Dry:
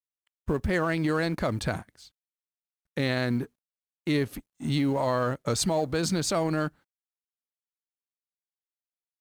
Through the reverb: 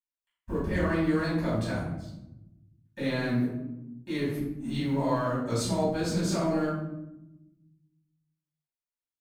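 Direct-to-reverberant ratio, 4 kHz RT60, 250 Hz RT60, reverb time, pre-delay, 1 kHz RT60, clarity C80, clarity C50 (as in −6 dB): −11.5 dB, 0.50 s, 1.5 s, 0.90 s, 3 ms, 0.80 s, 4.5 dB, 1.0 dB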